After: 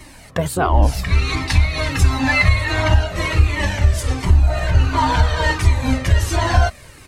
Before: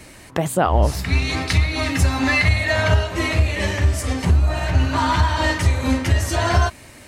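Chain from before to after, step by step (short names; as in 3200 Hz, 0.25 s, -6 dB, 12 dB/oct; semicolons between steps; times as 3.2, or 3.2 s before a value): harmoniser -12 st -8 dB; cascading flanger falling 1.4 Hz; gain +4.5 dB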